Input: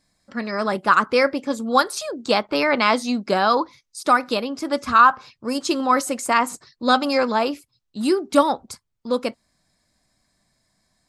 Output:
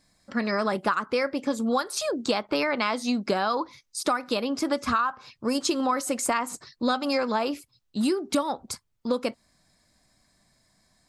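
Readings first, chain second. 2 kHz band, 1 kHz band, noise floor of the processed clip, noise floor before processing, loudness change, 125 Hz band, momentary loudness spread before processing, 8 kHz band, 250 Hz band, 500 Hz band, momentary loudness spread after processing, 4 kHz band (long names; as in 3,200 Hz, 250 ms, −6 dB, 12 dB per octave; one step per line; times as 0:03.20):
−8.0 dB, −9.0 dB, −72 dBFS, −74 dBFS, −6.5 dB, can't be measured, 12 LU, −0.5 dB, −3.5 dB, −5.5 dB, 8 LU, −5.0 dB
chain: downward compressor 12 to 1, threshold −24 dBFS, peak gain reduction 16 dB
level +2.5 dB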